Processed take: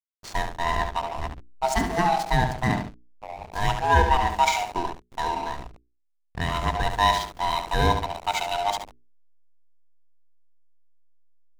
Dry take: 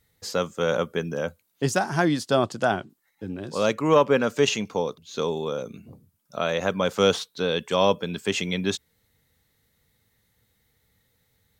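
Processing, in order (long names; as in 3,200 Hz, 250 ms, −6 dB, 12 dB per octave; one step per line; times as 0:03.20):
neighbouring bands swapped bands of 500 Hz
parametric band 8,800 Hz +2.5 dB 1 octave
flutter between parallel walls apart 12 metres, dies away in 0.67 s
slack as between gear wheels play −25 dBFS
mains-hum notches 60/120/180/240/300/360/420 Hz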